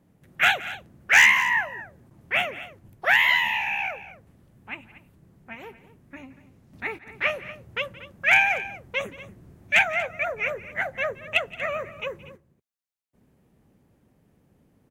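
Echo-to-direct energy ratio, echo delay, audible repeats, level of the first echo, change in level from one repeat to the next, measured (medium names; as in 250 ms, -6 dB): -14.5 dB, 172 ms, 2, -19.5 dB, no regular repeats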